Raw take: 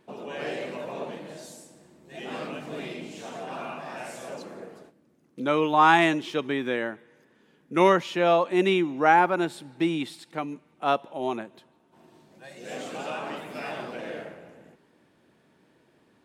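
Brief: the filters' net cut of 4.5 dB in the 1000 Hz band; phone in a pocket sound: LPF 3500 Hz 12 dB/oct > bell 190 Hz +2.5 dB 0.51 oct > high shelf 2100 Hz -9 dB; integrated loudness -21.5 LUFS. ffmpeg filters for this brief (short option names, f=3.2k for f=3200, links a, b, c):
-af "lowpass=3.5k,equalizer=f=190:t=o:w=0.51:g=2.5,equalizer=f=1k:t=o:g=-4,highshelf=f=2.1k:g=-9,volume=7dB"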